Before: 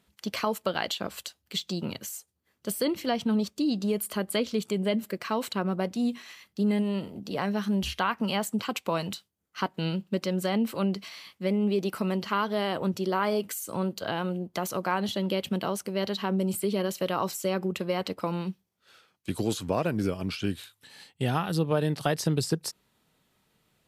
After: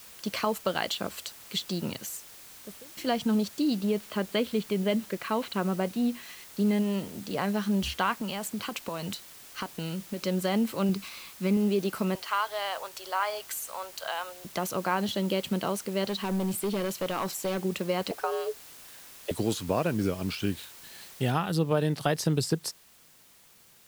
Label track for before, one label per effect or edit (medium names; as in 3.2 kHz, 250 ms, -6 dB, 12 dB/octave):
2.140000	2.970000	studio fade out
3.800000	6.230000	low-pass 4.1 kHz 24 dB/octave
8.140000	10.190000	compression, threshold -29 dBFS
10.890000	11.570000	comb 0.8 ms, depth 57%
12.150000	14.450000	high-pass 640 Hz 24 dB/octave
16.040000	17.580000	hard clipper -25 dBFS
18.110000	19.310000	frequency shift +240 Hz
21.320000	21.320000	noise floor step -49 dB -58 dB